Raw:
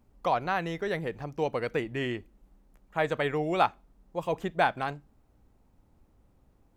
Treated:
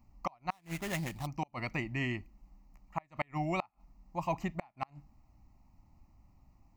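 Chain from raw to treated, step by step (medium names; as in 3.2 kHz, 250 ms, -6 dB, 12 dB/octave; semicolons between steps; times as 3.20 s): inverted gate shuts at -17 dBFS, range -34 dB; static phaser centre 2.3 kHz, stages 8; 0.51–1.27 s: sample-rate reducer 4.7 kHz, jitter 20%; trim +2 dB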